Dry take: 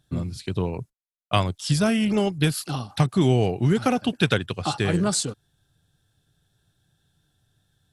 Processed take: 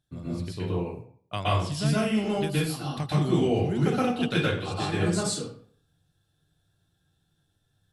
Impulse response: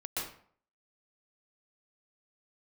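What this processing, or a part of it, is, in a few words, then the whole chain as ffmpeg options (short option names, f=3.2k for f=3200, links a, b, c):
bathroom: -filter_complex "[1:a]atrim=start_sample=2205[a];[0:a][a]afir=irnorm=-1:irlink=0,volume=-6.5dB"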